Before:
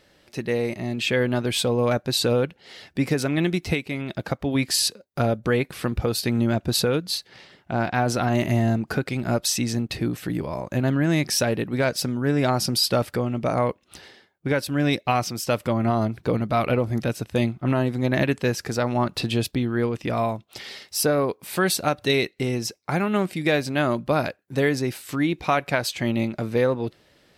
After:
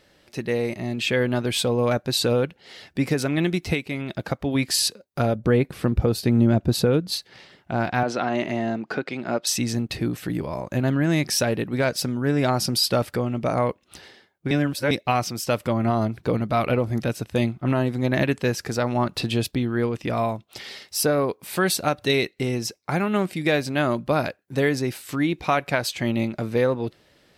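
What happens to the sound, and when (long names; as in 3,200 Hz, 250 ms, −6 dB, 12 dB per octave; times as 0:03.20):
0:05.35–0:07.12: tilt shelving filter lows +5 dB, about 770 Hz
0:08.03–0:09.47: band-pass filter 250–4,400 Hz
0:14.51–0:14.91: reverse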